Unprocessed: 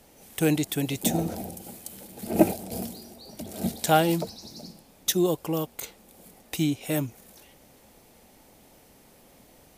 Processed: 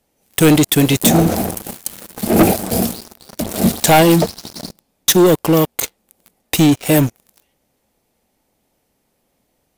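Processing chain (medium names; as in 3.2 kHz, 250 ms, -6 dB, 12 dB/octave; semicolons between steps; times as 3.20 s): waveshaping leveller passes 5; trim -1.5 dB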